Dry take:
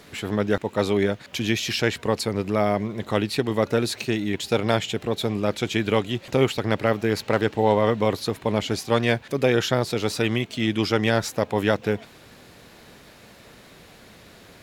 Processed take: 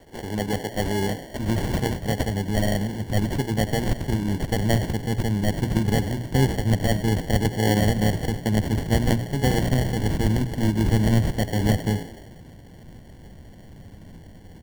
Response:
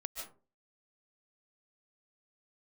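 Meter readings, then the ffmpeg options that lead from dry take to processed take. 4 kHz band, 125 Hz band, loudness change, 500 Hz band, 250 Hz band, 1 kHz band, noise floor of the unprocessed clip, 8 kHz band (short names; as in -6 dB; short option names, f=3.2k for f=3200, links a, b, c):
-4.0 dB, +6.5 dB, 0.0 dB, -5.5 dB, +1.0 dB, -3.0 dB, -49 dBFS, +0.5 dB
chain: -filter_complex "[0:a]highshelf=f=7.4k:g=11.5,bandreject=f=60:t=h:w=6,bandreject=f=120:t=h:w=6,bandreject=f=180:t=h:w=6,bandreject=f=240:t=h:w=6,bandreject=f=300:t=h:w=6,bandreject=f=360:t=h:w=6,bandreject=f=420:t=h:w=6,asplit=7[a][b][c][d][e][f][g];[b]adelay=93,afreqshift=63,volume=-13dB[h];[c]adelay=186,afreqshift=126,volume=-17.6dB[i];[d]adelay=279,afreqshift=189,volume=-22.2dB[j];[e]adelay=372,afreqshift=252,volume=-26.7dB[k];[f]adelay=465,afreqshift=315,volume=-31.3dB[l];[g]adelay=558,afreqshift=378,volume=-35.9dB[m];[a][h][i][j][k][l][m]amix=inputs=7:normalize=0,acrossover=split=270[n][o];[o]acrusher=samples=35:mix=1:aa=0.000001[p];[n][p]amix=inputs=2:normalize=0,asubboost=boost=3.5:cutoff=230,volume=-3dB"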